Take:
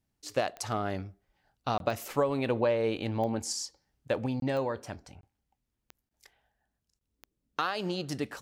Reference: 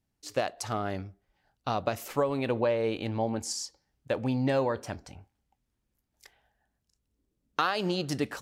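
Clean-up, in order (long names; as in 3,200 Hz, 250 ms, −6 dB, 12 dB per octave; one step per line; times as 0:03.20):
click removal
repair the gap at 0:01.78/0:04.40/0:05.21/0:06.09/0:06.99, 22 ms
level 0 dB, from 0:04.26 +3.5 dB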